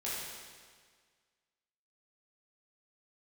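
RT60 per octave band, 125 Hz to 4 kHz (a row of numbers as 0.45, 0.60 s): 1.7, 1.7, 1.7, 1.7, 1.7, 1.6 s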